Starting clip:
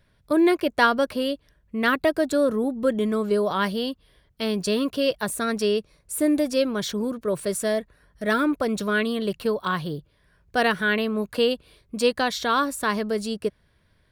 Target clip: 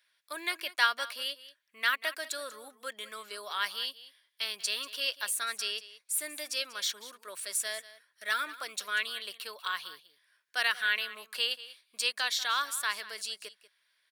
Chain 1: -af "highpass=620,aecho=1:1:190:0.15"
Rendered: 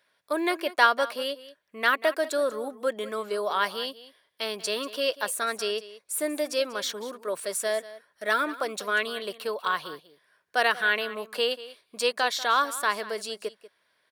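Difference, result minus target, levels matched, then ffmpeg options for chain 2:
500 Hz band +12.5 dB
-af "highpass=1.9k,aecho=1:1:190:0.15"

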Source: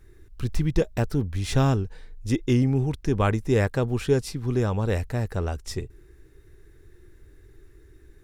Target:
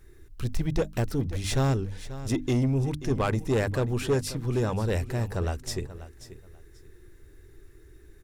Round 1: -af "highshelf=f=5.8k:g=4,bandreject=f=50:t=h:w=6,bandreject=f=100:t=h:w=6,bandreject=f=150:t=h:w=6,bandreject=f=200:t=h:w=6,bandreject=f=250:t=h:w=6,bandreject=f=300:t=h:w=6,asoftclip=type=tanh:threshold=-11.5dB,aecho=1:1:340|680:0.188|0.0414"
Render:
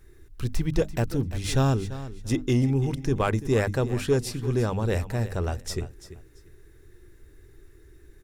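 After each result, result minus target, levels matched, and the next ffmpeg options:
echo 0.195 s early; soft clip: distortion -9 dB
-af "highshelf=f=5.8k:g=4,bandreject=f=50:t=h:w=6,bandreject=f=100:t=h:w=6,bandreject=f=150:t=h:w=6,bandreject=f=200:t=h:w=6,bandreject=f=250:t=h:w=6,bandreject=f=300:t=h:w=6,asoftclip=type=tanh:threshold=-11.5dB,aecho=1:1:535|1070:0.188|0.0414"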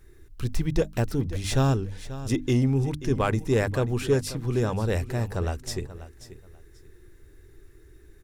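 soft clip: distortion -9 dB
-af "highshelf=f=5.8k:g=4,bandreject=f=50:t=h:w=6,bandreject=f=100:t=h:w=6,bandreject=f=150:t=h:w=6,bandreject=f=200:t=h:w=6,bandreject=f=250:t=h:w=6,bandreject=f=300:t=h:w=6,asoftclip=type=tanh:threshold=-18.5dB,aecho=1:1:535|1070:0.188|0.0414"

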